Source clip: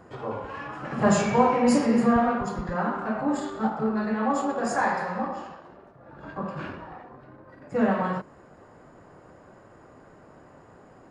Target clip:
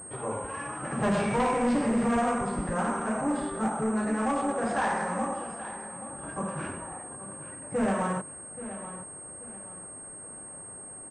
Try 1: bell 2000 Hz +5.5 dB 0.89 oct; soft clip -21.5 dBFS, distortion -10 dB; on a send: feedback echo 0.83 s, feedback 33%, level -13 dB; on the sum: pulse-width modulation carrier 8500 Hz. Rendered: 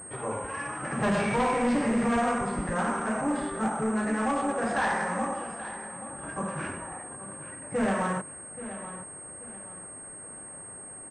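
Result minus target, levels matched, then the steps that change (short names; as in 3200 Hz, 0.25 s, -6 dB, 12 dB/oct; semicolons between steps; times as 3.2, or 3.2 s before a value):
2000 Hz band +2.5 dB
remove: bell 2000 Hz +5.5 dB 0.89 oct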